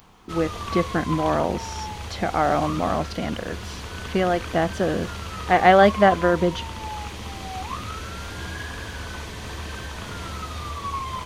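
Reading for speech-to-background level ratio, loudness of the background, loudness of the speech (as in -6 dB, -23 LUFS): 10.5 dB, -32.5 LUFS, -22.0 LUFS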